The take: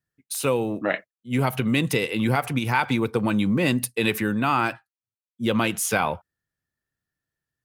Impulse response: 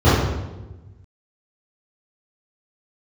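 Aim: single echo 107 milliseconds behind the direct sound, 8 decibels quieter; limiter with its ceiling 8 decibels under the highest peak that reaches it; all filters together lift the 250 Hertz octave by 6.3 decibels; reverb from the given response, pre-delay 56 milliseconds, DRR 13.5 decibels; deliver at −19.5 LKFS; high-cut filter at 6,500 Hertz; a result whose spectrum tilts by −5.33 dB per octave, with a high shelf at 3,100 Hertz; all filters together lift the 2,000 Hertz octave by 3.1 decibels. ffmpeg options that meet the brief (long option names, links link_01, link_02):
-filter_complex "[0:a]lowpass=6500,equalizer=frequency=250:width_type=o:gain=7.5,equalizer=frequency=2000:width_type=o:gain=6,highshelf=frequency=3100:gain=-5,alimiter=limit=-12.5dB:level=0:latency=1,aecho=1:1:107:0.398,asplit=2[link_01][link_02];[1:a]atrim=start_sample=2205,adelay=56[link_03];[link_02][link_03]afir=irnorm=-1:irlink=0,volume=-39dB[link_04];[link_01][link_04]amix=inputs=2:normalize=0,volume=2dB"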